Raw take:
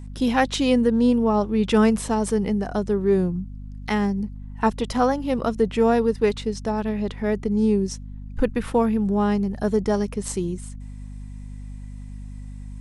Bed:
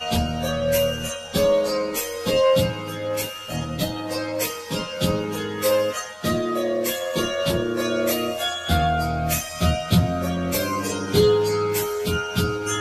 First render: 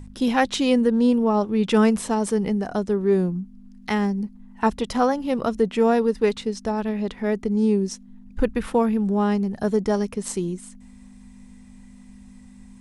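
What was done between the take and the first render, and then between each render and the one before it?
hum removal 50 Hz, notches 3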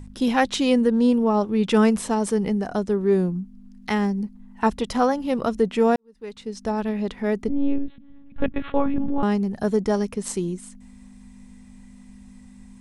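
0:05.96–0:06.70: fade in quadratic
0:07.48–0:09.23: one-pitch LPC vocoder at 8 kHz 280 Hz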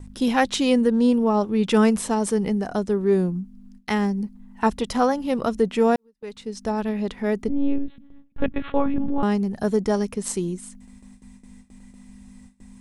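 noise gate with hold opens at −37 dBFS
high-shelf EQ 8,100 Hz +4.5 dB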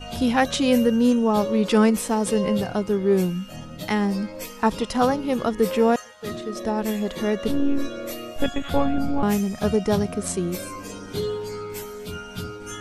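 mix in bed −10.5 dB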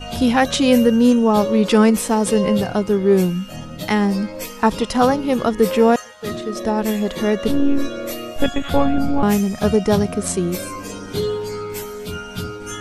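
level +5 dB
brickwall limiter −3 dBFS, peak gain reduction 2 dB

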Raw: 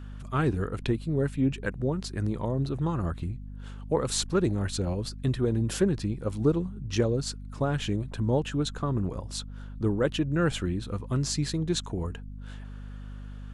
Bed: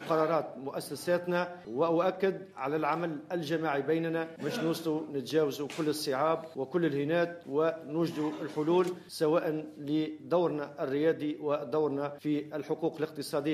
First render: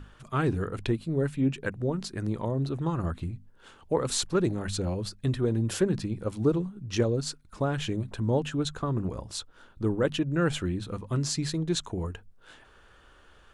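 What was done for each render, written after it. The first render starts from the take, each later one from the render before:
mains-hum notches 50/100/150/200/250 Hz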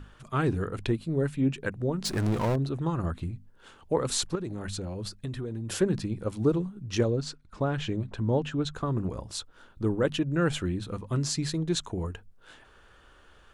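0:02.05–0:02.56: power curve on the samples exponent 0.5
0:04.35–0:05.70: downward compressor 5 to 1, threshold −31 dBFS
0:07.11–0:08.74: high-frequency loss of the air 74 metres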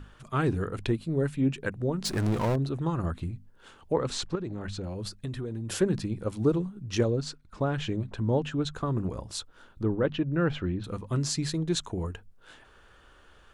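0:03.92–0:04.84: high-frequency loss of the air 93 metres
0:09.83–0:10.84: high-frequency loss of the air 240 metres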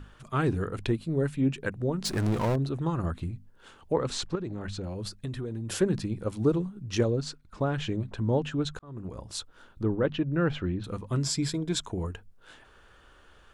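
0:08.79–0:09.39: fade in
0:11.24–0:11.81: EQ curve with evenly spaced ripples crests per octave 1.7, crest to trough 8 dB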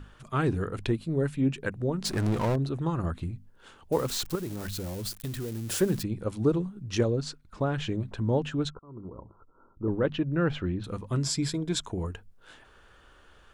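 0:03.92–0:06.03: spike at every zero crossing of −30.5 dBFS
0:08.70–0:09.88: Chebyshev low-pass with heavy ripple 1,400 Hz, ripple 6 dB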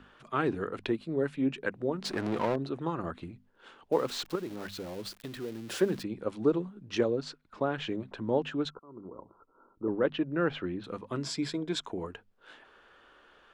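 three-way crossover with the lows and the highs turned down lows −17 dB, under 210 Hz, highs −13 dB, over 4,600 Hz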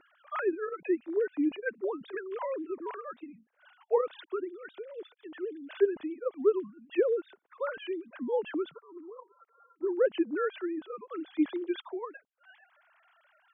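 three sine waves on the formant tracks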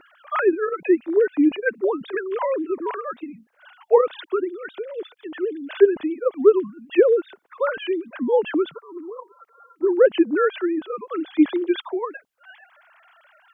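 level +11 dB

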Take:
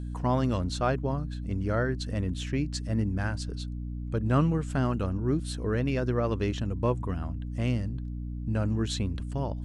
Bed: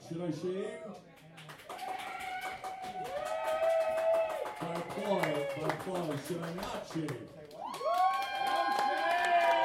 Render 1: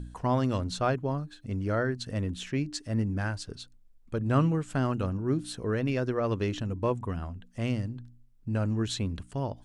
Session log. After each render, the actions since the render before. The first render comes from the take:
hum removal 60 Hz, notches 5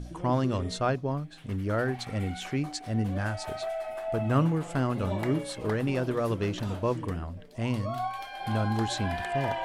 mix in bed −4 dB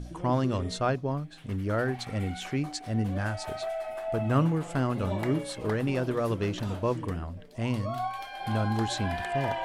no processing that can be heard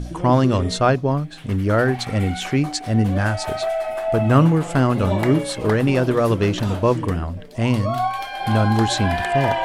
level +10.5 dB
brickwall limiter −2 dBFS, peak gain reduction 1 dB

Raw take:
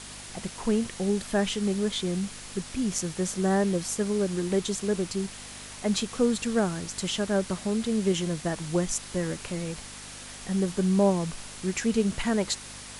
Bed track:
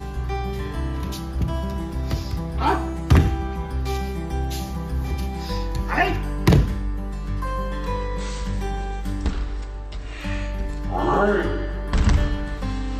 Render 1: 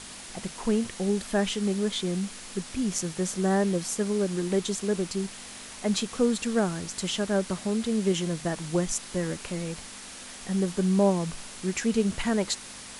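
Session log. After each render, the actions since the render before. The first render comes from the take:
hum removal 50 Hz, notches 3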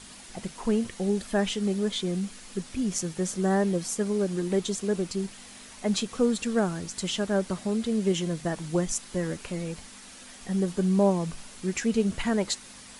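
broadband denoise 6 dB, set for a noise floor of −43 dBFS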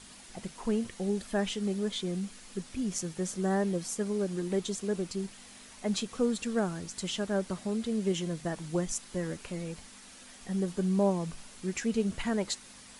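level −4.5 dB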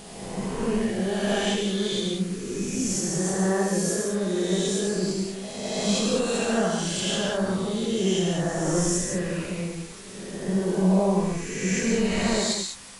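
peak hold with a rise ahead of every peak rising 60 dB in 1.72 s
reverb whose tail is shaped and stops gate 230 ms flat, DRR −1.5 dB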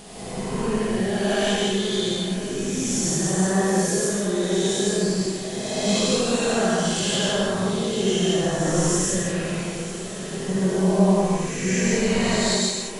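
feedback delay with all-pass diffusion 939 ms, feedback 73%, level −14.5 dB
reverb whose tail is shaped and stops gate 190 ms rising, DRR −1 dB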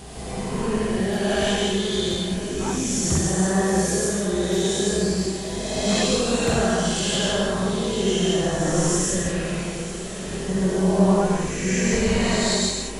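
mix in bed track −11.5 dB

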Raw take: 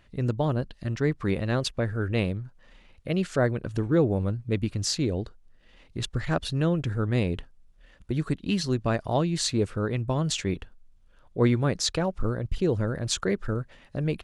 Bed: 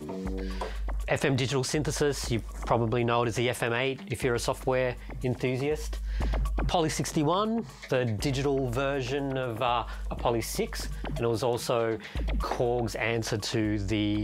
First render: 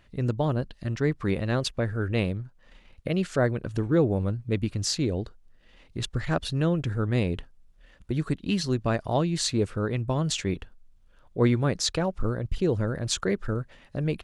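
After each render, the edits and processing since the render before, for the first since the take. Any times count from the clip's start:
0:02.39–0:03.08: transient designer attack +7 dB, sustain −3 dB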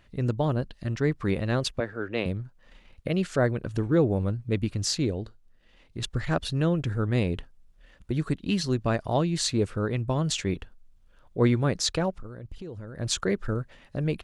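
0:01.80–0:02.26: three-way crossover with the lows and the highs turned down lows −17 dB, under 230 Hz, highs −17 dB, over 5,900 Hz
0:05.11–0:06.03: tuned comb filter 110 Hz, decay 0.22 s, mix 40%
0:12.10–0:12.99: downward compressor 5 to 1, threshold −37 dBFS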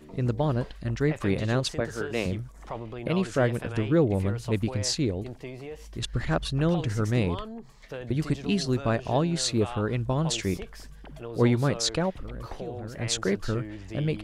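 mix in bed −11 dB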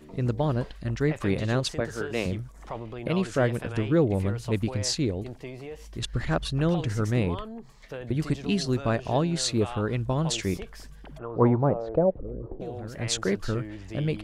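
0:07.12–0:08.20: dynamic equaliser 5,500 Hz, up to −7 dB, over −56 dBFS, Q 1.2
0:11.17–0:12.60: low-pass with resonance 1,300 Hz → 340 Hz, resonance Q 2.7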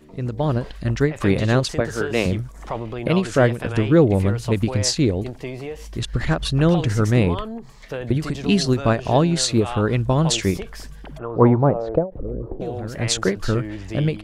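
automatic gain control gain up to 8.5 dB
every ending faded ahead of time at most 190 dB per second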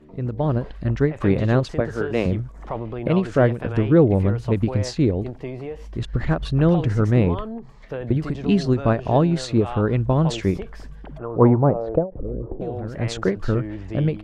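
low-pass filter 1,300 Hz 6 dB per octave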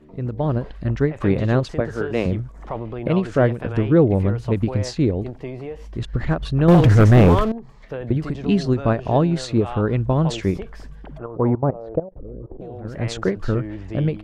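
0:06.68–0:07.52: leveller curve on the samples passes 3
0:11.26–0:12.85: output level in coarse steps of 17 dB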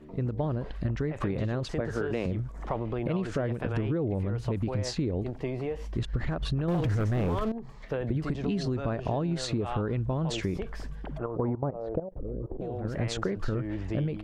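brickwall limiter −14.5 dBFS, peak gain reduction 10 dB
downward compressor 5 to 1, threshold −26 dBFS, peak gain reduction 8.5 dB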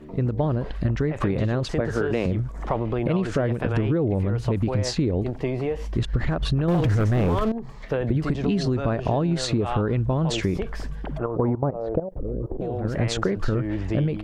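level +6.5 dB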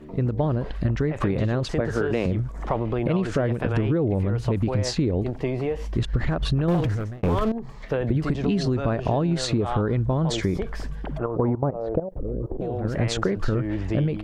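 0:06.72–0:07.23: fade out
0:09.62–0:10.68: notch filter 2,700 Hz, Q 5.6

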